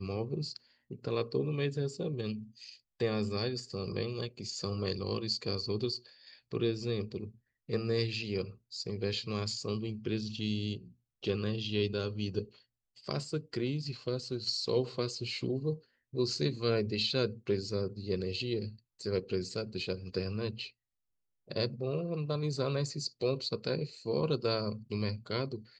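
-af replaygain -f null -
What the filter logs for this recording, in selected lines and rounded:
track_gain = +14.6 dB
track_peak = 0.103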